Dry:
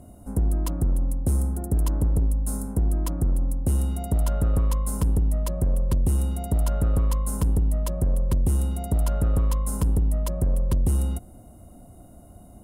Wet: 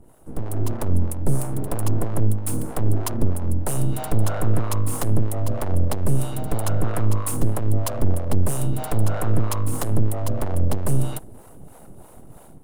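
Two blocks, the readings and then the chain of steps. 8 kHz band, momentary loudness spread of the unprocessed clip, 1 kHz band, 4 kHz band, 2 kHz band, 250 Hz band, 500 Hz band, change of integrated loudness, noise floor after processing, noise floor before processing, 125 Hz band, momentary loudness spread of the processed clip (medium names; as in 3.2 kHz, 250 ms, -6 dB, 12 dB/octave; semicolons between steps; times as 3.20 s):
+4.0 dB, 3 LU, +6.5 dB, +5.5 dB, +9.5 dB, +2.5 dB, +5.0 dB, 0.0 dB, -45 dBFS, -48 dBFS, +2.0 dB, 4 LU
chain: full-wave rectifier; level rider gain up to 8.5 dB; harmonic tremolo 3.1 Hz, depth 70%, crossover 500 Hz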